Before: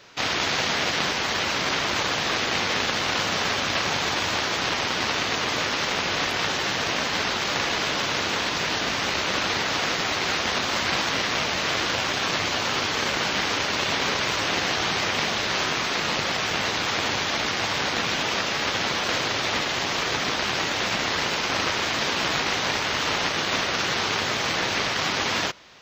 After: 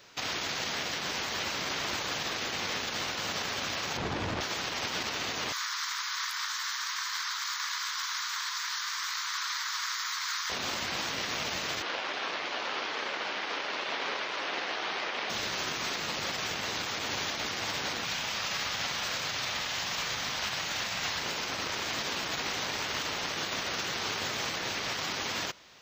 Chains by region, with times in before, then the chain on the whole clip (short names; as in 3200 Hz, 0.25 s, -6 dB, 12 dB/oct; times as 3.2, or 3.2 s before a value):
3.97–4.41 LPF 2000 Hz 6 dB/oct + low shelf 480 Hz +11 dB + core saturation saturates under 430 Hz
5.52–10.5 steep high-pass 980 Hz 72 dB/oct + bell 2700 Hz -10.5 dB 0.52 oct
11.82–15.3 HPF 380 Hz + air absorption 210 m
18.04–21.2 bell 350 Hz -9 dB 1.3 oct + flutter echo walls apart 7.5 m, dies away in 0.33 s
whole clip: high shelf 7900 Hz +11 dB; limiter -15.5 dBFS; gain -6.5 dB